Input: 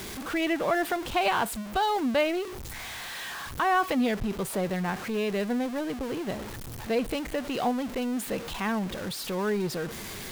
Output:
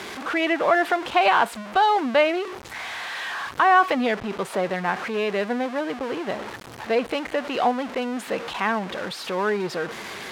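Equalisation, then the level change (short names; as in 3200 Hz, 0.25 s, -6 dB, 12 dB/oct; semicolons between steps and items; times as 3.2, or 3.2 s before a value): band-pass 1200 Hz, Q 0.51; +8.5 dB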